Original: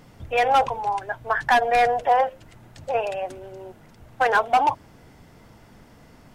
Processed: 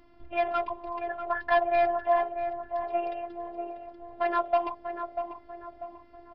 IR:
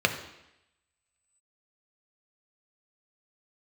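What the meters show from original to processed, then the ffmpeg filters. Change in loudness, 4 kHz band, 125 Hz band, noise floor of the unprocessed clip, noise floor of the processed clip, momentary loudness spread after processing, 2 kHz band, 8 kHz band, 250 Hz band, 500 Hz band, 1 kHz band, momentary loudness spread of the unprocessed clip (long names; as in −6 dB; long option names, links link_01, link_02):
−7.5 dB, below −10 dB, below −15 dB, −51 dBFS, −54 dBFS, 18 LU, −10.0 dB, can't be measured, 0.0 dB, −3.0 dB, −8.0 dB, 18 LU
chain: -filter_complex "[0:a]highshelf=frequency=2200:gain=-10,asplit=2[link_01][link_02];[link_02]adelay=642,lowpass=frequency=1200:poles=1,volume=-6.5dB,asplit=2[link_03][link_04];[link_04]adelay=642,lowpass=frequency=1200:poles=1,volume=0.48,asplit=2[link_05][link_06];[link_06]adelay=642,lowpass=frequency=1200:poles=1,volume=0.48,asplit=2[link_07][link_08];[link_08]adelay=642,lowpass=frequency=1200:poles=1,volume=0.48,asplit=2[link_09][link_10];[link_10]adelay=642,lowpass=frequency=1200:poles=1,volume=0.48,asplit=2[link_11][link_12];[link_12]adelay=642,lowpass=frequency=1200:poles=1,volume=0.48[link_13];[link_03][link_05][link_07][link_09][link_11][link_13]amix=inputs=6:normalize=0[link_14];[link_01][link_14]amix=inputs=2:normalize=0,afftfilt=real='hypot(re,im)*cos(PI*b)':imag='0':win_size=512:overlap=0.75,aresample=11025,aresample=44100,volume=-2dB"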